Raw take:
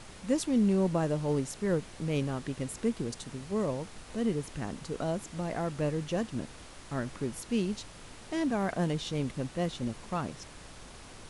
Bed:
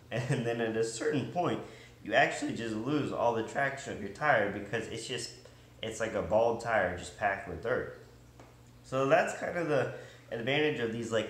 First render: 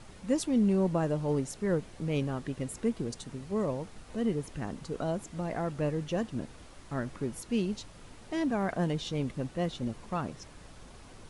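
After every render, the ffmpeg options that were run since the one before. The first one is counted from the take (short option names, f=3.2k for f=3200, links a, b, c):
-af "afftdn=nr=6:nf=-49"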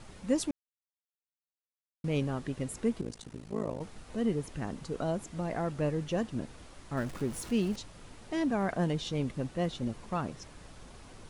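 -filter_complex "[0:a]asettb=1/sr,asplit=3[a][b][c];[a]atrim=end=3.014[d];[b]atrim=start=3.01:end=3.81,asetpts=PTS-STARTPTS,afade=t=in:d=0.004:c=qsin,afade=t=out:st=0.796:d=0.004:c=qsin,tremolo=f=54:d=0.974[e];[c]atrim=start=3.806[f];[d][e]acrossfade=d=0.004:c1=hsin:c2=qsin[g];[g][f]acrossfade=d=0.004:c1=qsin:c2=hsin,asettb=1/sr,asplit=3[h][i][j];[h]atrim=end=6.974[k];[i]atrim=start=6.97:end=7.76,asetpts=PTS-STARTPTS,afade=t=in:d=0.004:c=qsin,afade=t=out:st=0.786:d=0.004:c=qsin,aeval=exprs='val(0)+0.5*0.00708*sgn(val(0))':c=same[l];[j]atrim=start=7.756[m];[k][l]acrossfade=d=0.004:c1=hsin:c2=qsin[n];[n][m]acrossfade=d=0.004:c1=qsin:c2=hsin,asplit=3[o][p][q];[o]atrim=end=0.51,asetpts=PTS-STARTPTS,afade=t=out:st=0.506:d=0.004:c=hsin[r];[p]atrim=start=0.51:end=2.04,asetpts=PTS-STARTPTS,volume=0[s];[q]atrim=start=2.04,asetpts=PTS-STARTPTS,afade=t=in:d=0.004:c=hsin[t];[r][s][t]concat=n=3:v=0:a=1"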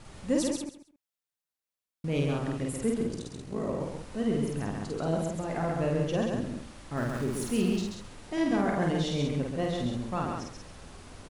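-filter_complex "[0:a]asplit=2[a][b];[b]adelay=49,volume=-2dB[c];[a][c]amix=inputs=2:normalize=0,asplit=2[d][e];[e]aecho=0:1:134|268|402:0.631|0.126|0.0252[f];[d][f]amix=inputs=2:normalize=0"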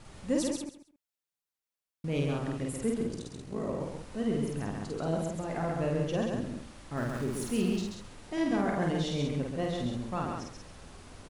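-af "volume=-2dB"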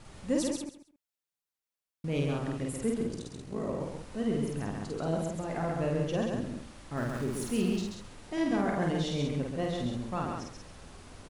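-af anull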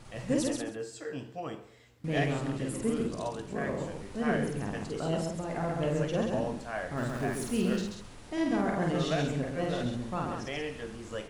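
-filter_complex "[1:a]volume=-7.5dB[a];[0:a][a]amix=inputs=2:normalize=0"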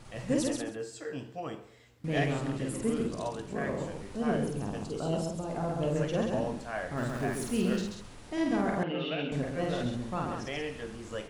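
-filter_complex "[0:a]asettb=1/sr,asplit=3[a][b][c];[a]atrim=end=4.174[d];[b]atrim=start=4.17:end=5.96,asetpts=PTS-STARTPTS,afade=t=in:d=0.004:c=qsin,afade=t=out:st=1.786:d=0.004:c=qsin,equalizer=f=1.9k:w=2.3:g=-10.5[e];[c]atrim=start=5.956[f];[d][e]acrossfade=d=0.004:c1=hsin:c2=qsin[g];[g][f]acrossfade=d=0.004:c1=qsin:c2=hsin,asettb=1/sr,asplit=3[h][i][j];[h]atrim=end=8.834[k];[i]atrim=start=8.83:end=9.32,asetpts=PTS-STARTPTS,afade=t=in:d=0.004:c=qsin,afade=t=out:st=0.486:d=0.004:c=qsin,highpass=f=180:w=0.5412,highpass=f=180:w=1.3066,equalizer=f=200:t=q:w=4:g=-8,equalizer=f=370:t=q:w=4:g=-4,equalizer=f=690:t=q:w=4:g=-7,equalizer=f=1.1k:t=q:w=4:g=-8,equalizer=f=1.8k:t=q:w=4:g=-9,equalizer=f=2.8k:t=q:w=4:g=10,lowpass=f=3.1k:w=0.5412,lowpass=f=3.1k:w=1.3066[l];[j]atrim=start=9.316[m];[k][l]acrossfade=d=0.004:c1=hsin:c2=qsin[n];[n][m]acrossfade=d=0.004:c1=qsin:c2=hsin"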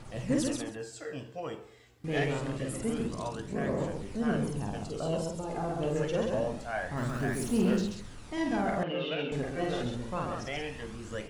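-af "aphaser=in_gain=1:out_gain=1:delay=2.7:decay=0.37:speed=0.26:type=triangular,asoftclip=type=tanh:threshold=-17.5dB"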